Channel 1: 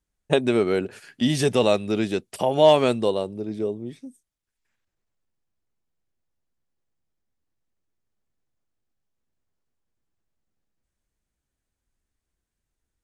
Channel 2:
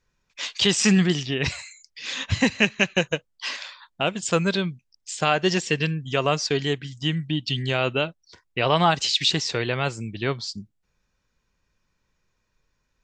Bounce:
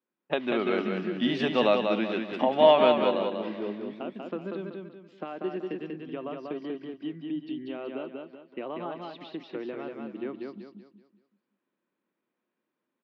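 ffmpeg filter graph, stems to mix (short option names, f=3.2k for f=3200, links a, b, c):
-filter_complex "[0:a]volume=-5.5dB,asplit=2[a][b];[b]volume=-5dB[c];[1:a]acompressor=threshold=-25dB:ratio=4,bandpass=f=320:t=q:w=2.4:csg=0,crystalizer=i=2.5:c=0,volume=0.5dB,asplit=2[d][e];[e]volume=-3.5dB[f];[c][f]amix=inputs=2:normalize=0,aecho=0:1:190|380|570|760|950:1|0.37|0.137|0.0507|0.0187[g];[a][d][g]amix=inputs=3:normalize=0,dynaudnorm=f=140:g=9:m=4dB,highpass=f=210:w=0.5412,highpass=f=210:w=1.3066,equalizer=f=290:t=q:w=4:g=-4,equalizer=f=430:t=q:w=4:g=-8,equalizer=f=1.2k:t=q:w=4:g=3,lowpass=f=3.4k:w=0.5412,lowpass=f=3.4k:w=1.3066"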